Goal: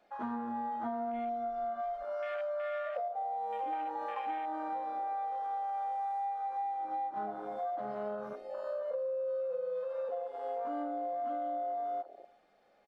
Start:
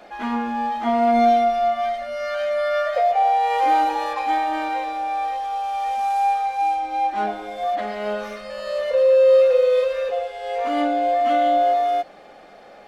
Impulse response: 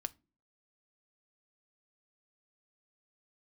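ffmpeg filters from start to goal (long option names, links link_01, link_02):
-filter_complex "[0:a]aecho=1:1:364:0.0841,afwtdn=0.0355,asettb=1/sr,asplit=3[link_01][link_02][link_03];[link_01]atrim=end=3.084[link_04];[link_02]atrim=start=3.08:end=3.73,asetpts=PTS-STARTPTS,afade=type=in:duration=0.004:curve=qsin,afade=type=out:start_time=0.646:duration=0.004:curve=qsin,equalizer=frequency=1900:width_type=o:width=1.9:gain=-9.5[link_05];[link_03]atrim=start=3.726[link_06];[link_04][link_05]acrossfade=duration=0.004:curve1=hsin:curve2=qsin[link_07];[link_07][link_06]acrossfade=duration=0.004:curve1=qsin:curve2=hsin,acompressor=threshold=-27dB:ratio=10,asettb=1/sr,asplit=3[link_08][link_09][link_10];[link_08]atrim=end=8.154[link_11];[link_09]atrim=start=8.15:end=9.28,asetpts=PTS-STARTPTS,afade=type=in:duration=0.004:curve=qsin,afade=type=out:start_time=1.126:duration=0.004:curve=qsin,equalizer=frequency=3900:width_type=o:width=2.5:gain=-3.5[link_12];[link_10]atrim=start=9.276[link_13];[link_11][link_12]acrossfade=duration=0.004:curve1=hsin:curve2=qsin[link_14];[link_14][link_13]acrossfade=duration=0.004:curve1=qsin:curve2=hsin,volume=-6.5dB"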